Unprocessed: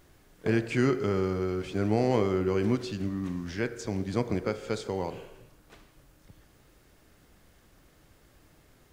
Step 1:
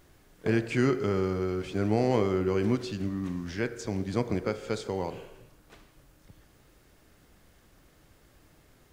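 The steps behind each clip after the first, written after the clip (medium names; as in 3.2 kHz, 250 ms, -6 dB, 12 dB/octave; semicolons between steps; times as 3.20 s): no audible change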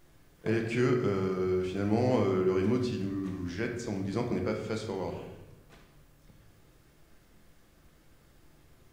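simulated room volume 250 m³, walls mixed, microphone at 0.78 m; trim -4 dB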